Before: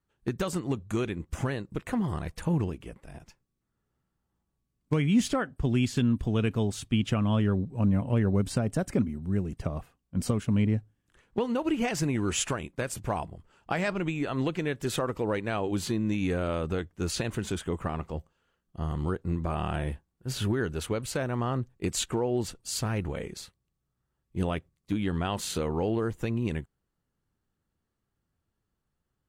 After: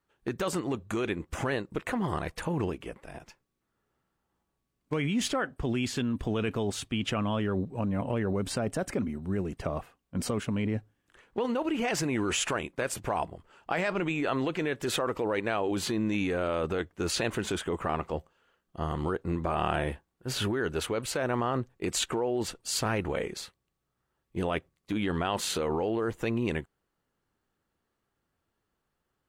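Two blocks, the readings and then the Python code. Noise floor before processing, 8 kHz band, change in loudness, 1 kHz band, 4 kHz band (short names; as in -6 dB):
-82 dBFS, +0.5 dB, -1.0 dB, +2.5 dB, +2.5 dB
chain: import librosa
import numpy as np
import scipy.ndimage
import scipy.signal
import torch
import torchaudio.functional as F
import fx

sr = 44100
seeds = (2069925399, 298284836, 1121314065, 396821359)

p1 = fx.bass_treble(x, sr, bass_db=-10, treble_db=-5)
p2 = fx.over_compress(p1, sr, threshold_db=-34.0, ratio=-0.5)
p3 = p1 + F.gain(torch.from_numpy(p2), 0.0).numpy()
p4 = fx.quant_float(p3, sr, bits=8)
y = F.gain(torch.from_numpy(p4), -1.5).numpy()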